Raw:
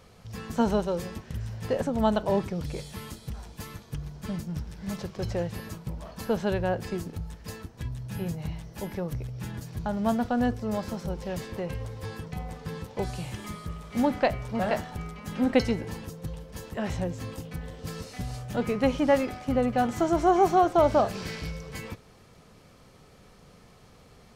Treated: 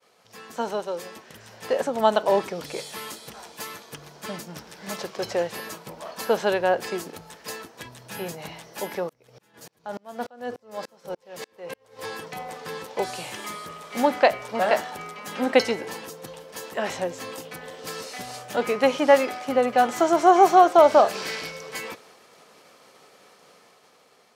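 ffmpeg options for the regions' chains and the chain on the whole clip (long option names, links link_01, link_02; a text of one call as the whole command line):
ffmpeg -i in.wav -filter_complex "[0:a]asettb=1/sr,asplit=3[link_01][link_02][link_03];[link_01]atrim=end=9.094[link_04];[link_02]atrim=start=9.09:end=11.99,asetpts=PTS-STARTPTS,afade=type=in:duration=0.004:curve=qsin,afade=type=out:start_time=2.896:duration=0.004:curve=qsin,equalizer=frequency=490:width=7.9:gain=5,aeval=exprs='val(0)*pow(10,-36*if(lt(mod(-3.4*n/s,1),2*abs(-3.4)/1000),1-mod(-3.4*n/s,1)/(2*abs(-3.4)/1000),(mod(-3.4*n/s,1)-2*abs(-3.4)/1000)/(1-2*abs(-3.4)/1000))/20)':channel_layout=same[link_05];[link_03]atrim=start=11.986[link_06];[link_04][link_05]acrossfade=duration=0.004:curve1=hsin:curve2=qsin[link_07];[link_07][link_06]acrossfade=duration=0.004:curve1=qsin:curve2=hsin,agate=range=-33dB:threshold=-51dB:ratio=3:detection=peak,highpass=440,dynaudnorm=framelen=450:gausssize=7:maxgain=8.5dB" out.wav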